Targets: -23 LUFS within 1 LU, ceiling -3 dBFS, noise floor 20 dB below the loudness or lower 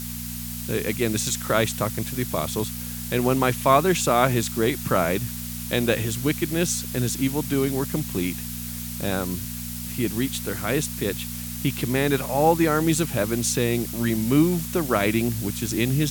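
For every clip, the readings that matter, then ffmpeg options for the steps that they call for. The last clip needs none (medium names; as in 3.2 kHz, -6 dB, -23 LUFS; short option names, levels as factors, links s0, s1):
hum 60 Hz; highest harmonic 240 Hz; hum level -33 dBFS; noise floor -33 dBFS; noise floor target -44 dBFS; loudness -24.0 LUFS; peak level -3.5 dBFS; loudness target -23.0 LUFS
-> -af "bandreject=f=60:t=h:w=4,bandreject=f=120:t=h:w=4,bandreject=f=180:t=h:w=4,bandreject=f=240:t=h:w=4"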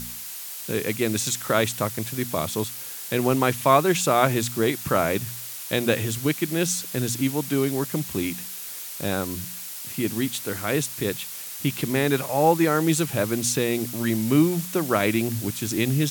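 hum not found; noise floor -36 dBFS; noise floor target -44 dBFS
-> -af "afftdn=nr=8:nf=-36"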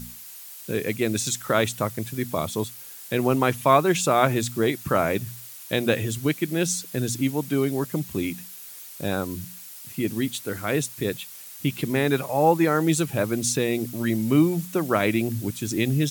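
noise floor -42 dBFS; noise floor target -45 dBFS
-> -af "afftdn=nr=6:nf=-42"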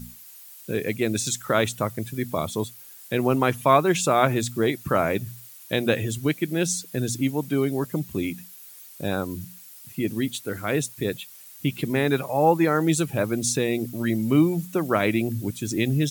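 noise floor -46 dBFS; loudness -24.5 LUFS; peak level -3.5 dBFS; loudness target -23.0 LUFS
-> -af "volume=1.19,alimiter=limit=0.708:level=0:latency=1"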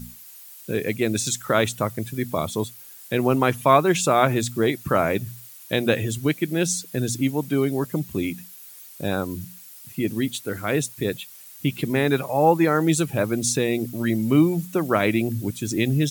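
loudness -23.0 LUFS; peak level -3.0 dBFS; noise floor -44 dBFS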